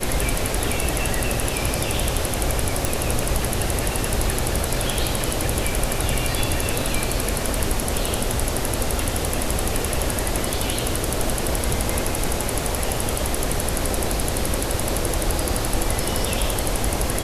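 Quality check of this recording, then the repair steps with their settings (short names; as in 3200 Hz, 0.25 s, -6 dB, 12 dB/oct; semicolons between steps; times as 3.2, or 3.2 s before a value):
2.85 pop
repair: de-click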